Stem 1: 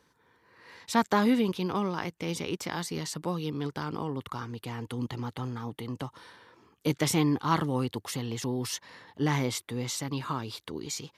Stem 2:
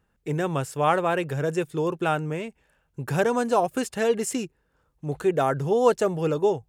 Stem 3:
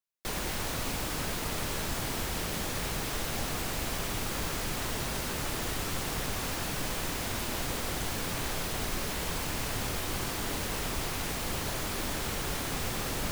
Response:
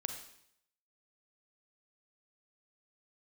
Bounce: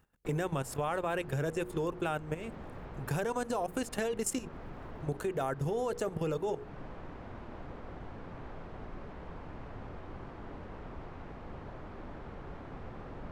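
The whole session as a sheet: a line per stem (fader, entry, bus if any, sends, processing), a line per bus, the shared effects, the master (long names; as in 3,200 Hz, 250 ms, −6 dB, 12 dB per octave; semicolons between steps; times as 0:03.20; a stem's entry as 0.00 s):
muted
+3.0 dB, 0.00 s, no send, high-shelf EQ 10,000 Hz +7 dB; mains-hum notches 60/120/180/240/300/360/420/480 Hz; output level in coarse steps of 14 dB
−9.0 dB, 0.00 s, no send, low-pass filter 1,200 Hz 12 dB per octave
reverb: not used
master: downward compressor 2.5 to 1, threshold −33 dBFS, peak gain reduction 8 dB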